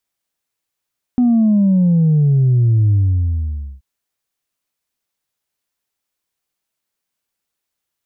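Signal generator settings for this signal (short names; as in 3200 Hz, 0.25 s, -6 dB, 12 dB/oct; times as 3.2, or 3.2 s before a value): sub drop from 250 Hz, over 2.63 s, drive 0.5 dB, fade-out 0.89 s, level -10 dB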